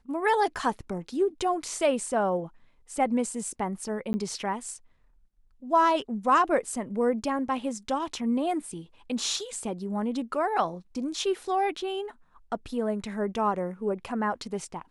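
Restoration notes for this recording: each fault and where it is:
4.13–4.14 s: dropout 10 ms

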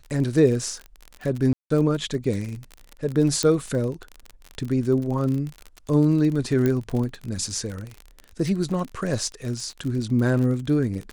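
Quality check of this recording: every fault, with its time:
crackle 40 per s -28 dBFS
1.53–1.70 s: dropout 174 ms
3.43 s: pop -8 dBFS
6.66 s: pop -11 dBFS

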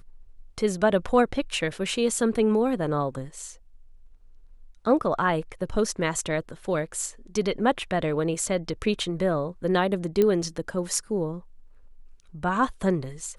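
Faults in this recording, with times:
10.22 s: pop -11 dBFS

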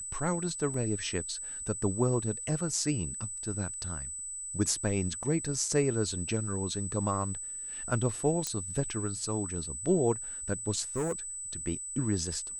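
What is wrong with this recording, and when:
whine 8 kHz -37 dBFS
0.74 s: dropout 3.1 ms
5.23 s: dropout 3.2 ms
8.47 s: pop -16 dBFS
10.96–11.13 s: clipped -27 dBFS

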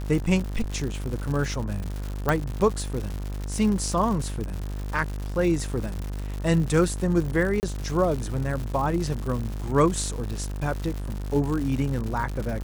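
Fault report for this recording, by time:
buzz 50 Hz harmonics 37 -31 dBFS
crackle 190 per s -30 dBFS
2.29 s: pop -10 dBFS
7.60–7.63 s: dropout 29 ms

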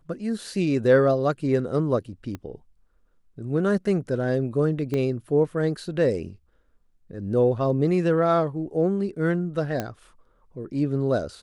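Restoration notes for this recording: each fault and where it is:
2.35 s: pop -21 dBFS
4.94 s: pop -16 dBFS
9.80 s: pop -13 dBFS

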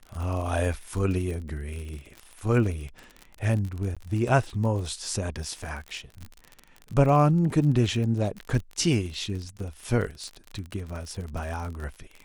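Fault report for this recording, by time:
crackle 44 per s -32 dBFS
3.95–3.97 s: dropout 16 ms

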